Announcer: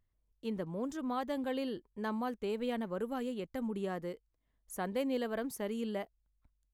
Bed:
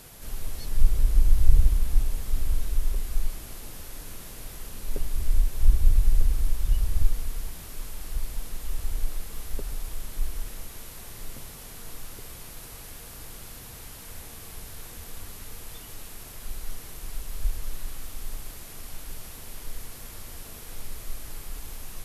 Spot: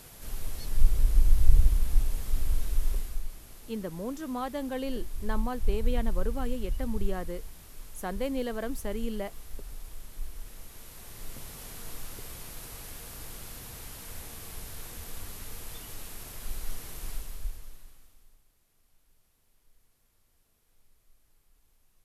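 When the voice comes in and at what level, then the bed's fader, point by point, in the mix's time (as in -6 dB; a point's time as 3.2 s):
3.25 s, +2.0 dB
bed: 2.96 s -2 dB
3.23 s -9 dB
10.36 s -9 dB
11.62 s -0.5 dB
17.1 s -0.5 dB
18.46 s -29 dB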